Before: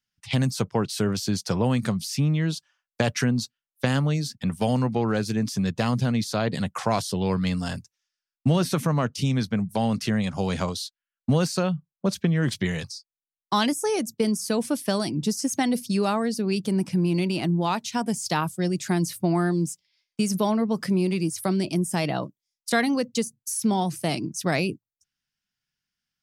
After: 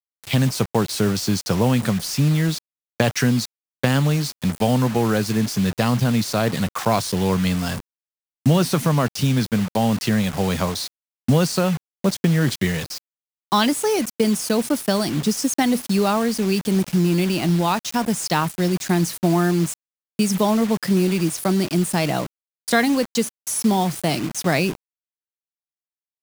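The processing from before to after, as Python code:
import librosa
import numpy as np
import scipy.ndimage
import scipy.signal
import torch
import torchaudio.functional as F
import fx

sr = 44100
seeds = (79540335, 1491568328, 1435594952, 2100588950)

y = fx.quant_dither(x, sr, seeds[0], bits=6, dither='none')
y = y * librosa.db_to_amplitude(4.5)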